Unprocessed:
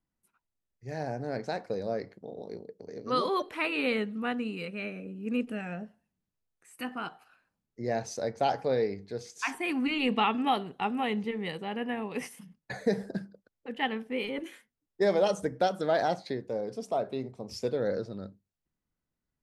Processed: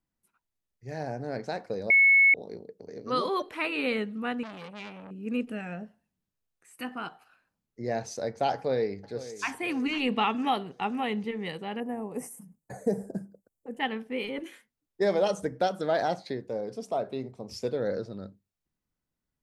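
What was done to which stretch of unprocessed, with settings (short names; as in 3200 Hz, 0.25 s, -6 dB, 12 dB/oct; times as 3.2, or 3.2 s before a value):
1.9–2.34 bleep 2200 Hz -15.5 dBFS
4.43–5.11 core saturation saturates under 1800 Hz
8.53–9.52 echo throw 0.5 s, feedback 45%, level -14.5 dB
11.8–13.8 EQ curve 720 Hz 0 dB, 3800 Hz -23 dB, 7500 Hz +6 dB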